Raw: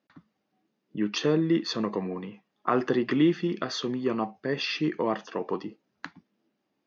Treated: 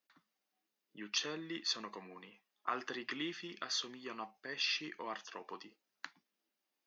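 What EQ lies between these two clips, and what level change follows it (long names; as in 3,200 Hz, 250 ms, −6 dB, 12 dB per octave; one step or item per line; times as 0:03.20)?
high-shelf EQ 2,100 Hz −8.5 dB
dynamic equaliser 510 Hz, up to −5 dB, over −39 dBFS, Q 1.2
first difference
+8.5 dB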